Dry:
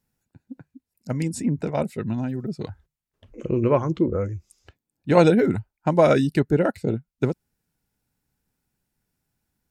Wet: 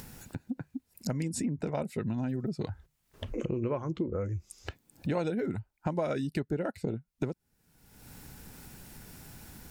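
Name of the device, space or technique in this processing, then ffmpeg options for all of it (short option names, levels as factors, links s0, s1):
upward and downward compression: -af "acompressor=mode=upward:threshold=0.1:ratio=2.5,acompressor=threshold=0.0562:ratio=6,volume=0.668"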